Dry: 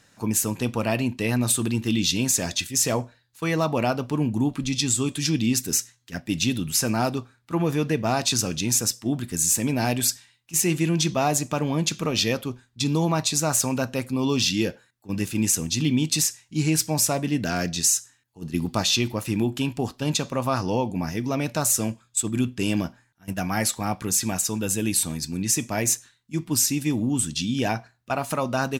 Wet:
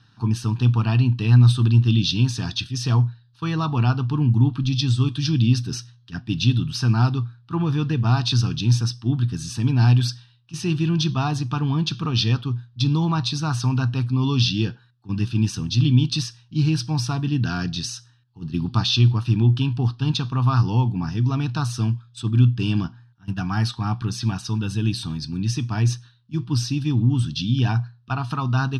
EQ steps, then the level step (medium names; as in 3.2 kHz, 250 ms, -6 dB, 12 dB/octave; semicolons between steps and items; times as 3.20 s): low-pass 6.9 kHz 24 dB/octave; peaking EQ 120 Hz +14.5 dB 0.35 oct; static phaser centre 2.1 kHz, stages 6; +2.0 dB